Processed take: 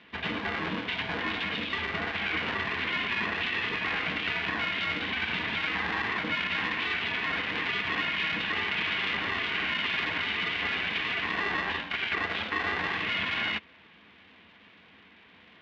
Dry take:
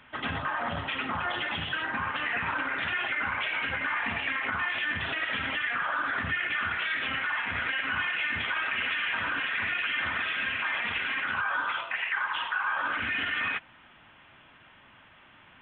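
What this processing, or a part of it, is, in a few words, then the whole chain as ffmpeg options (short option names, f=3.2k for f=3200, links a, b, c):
ring modulator pedal into a guitar cabinet: -af "aeval=exprs='val(0)*sgn(sin(2*PI*390*n/s))':c=same,highpass=81,equalizer=f=81:t=q:w=4:g=7,equalizer=f=130:t=q:w=4:g=-9,equalizer=f=200:t=q:w=4:g=7,equalizer=f=570:t=q:w=4:g=-10,equalizer=f=830:t=q:w=4:g=-4,equalizer=f=1.3k:t=q:w=4:g=-8,lowpass=f=3.7k:w=0.5412,lowpass=f=3.7k:w=1.3066,volume=2dB"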